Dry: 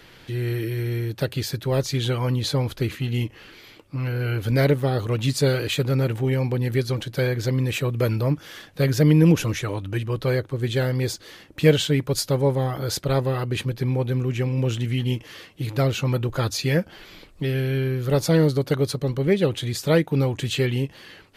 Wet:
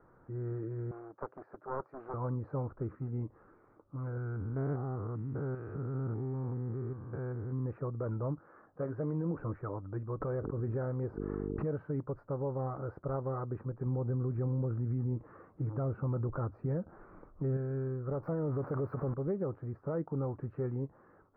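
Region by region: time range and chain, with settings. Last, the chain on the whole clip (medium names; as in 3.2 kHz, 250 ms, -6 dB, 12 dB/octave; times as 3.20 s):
0.91–2.14 s: high-pass 410 Hz + loudspeaker Doppler distortion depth 0.98 ms
4.17–7.66 s: spectrogram pixelated in time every 200 ms + peaking EQ 550 Hz -12 dB 0.33 oct
8.41–9.37 s: bass shelf 160 Hz -9 dB + doubling 18 ms -10.5 dB
10.20–11.69 s: gate -42 dBFS, range -13 dB + mains buzz 50 Hz, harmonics 9, -48 dBFS 0 dB/octave + swell ahead of each attack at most 27 dB/s
13.86–17.57 s: bass shelf 450 Hz +6.5 dB + tape noise reduction on one side only encoder only
18.23–19.14 s: zero-crossing glitches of -15 dBFS + level flattener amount 70%
whole clip: elliptic low-pass 1.3 kHz, stop band 60 dB; tilt shelf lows -3 dB; peak limiter -18 dBFS; trim -8.5 dB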